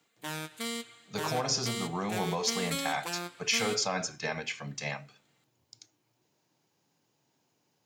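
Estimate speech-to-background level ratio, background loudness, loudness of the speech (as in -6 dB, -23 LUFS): 5.0 dB, -37.5 LUFS, -32.5 LUFS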